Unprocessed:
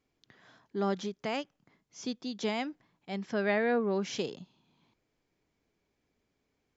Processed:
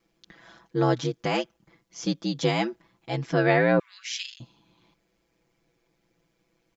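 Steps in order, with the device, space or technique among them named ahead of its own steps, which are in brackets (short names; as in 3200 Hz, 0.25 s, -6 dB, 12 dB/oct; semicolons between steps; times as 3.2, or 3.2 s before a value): 3.79–4.4 steep high-pass 1800 Hz 36 dB/oct; ring-modulated robot voice (ring modulator 60 Hz; comb 6 ms, depth 78%); gain +8.5 dB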